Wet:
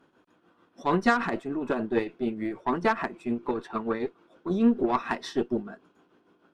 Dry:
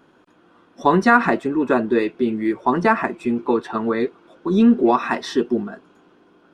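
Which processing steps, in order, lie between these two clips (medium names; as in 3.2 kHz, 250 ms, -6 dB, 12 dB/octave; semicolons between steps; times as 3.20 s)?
Chebyshev shaper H 6 -23 dB, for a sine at -1.5 dBFS; tremolo triangle 6.7 Hz, depth 65%; trim -6 dB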